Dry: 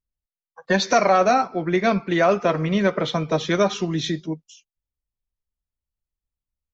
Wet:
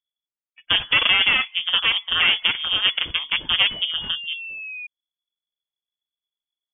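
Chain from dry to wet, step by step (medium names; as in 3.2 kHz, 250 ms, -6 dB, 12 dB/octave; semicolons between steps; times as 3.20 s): Chebyshev shaper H 4 -9 dB, 7 -26 dB, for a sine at -7 dBFS; painted sound rise, 3.58–4.87 s, 380–970 Hz -31 dBFS; frequency inversion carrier 3.4 kHz; trim -2.5 dB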